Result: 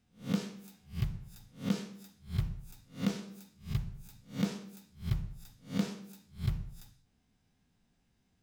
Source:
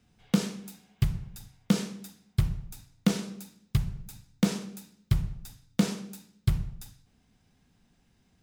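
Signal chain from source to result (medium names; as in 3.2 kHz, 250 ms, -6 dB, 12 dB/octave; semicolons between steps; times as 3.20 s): reverse spectral sustain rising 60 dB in 0.30 s; dynamic bell 9.7 kHz, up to -7 dB, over -54 dBFS, Q 0.94; trim -8.5 dB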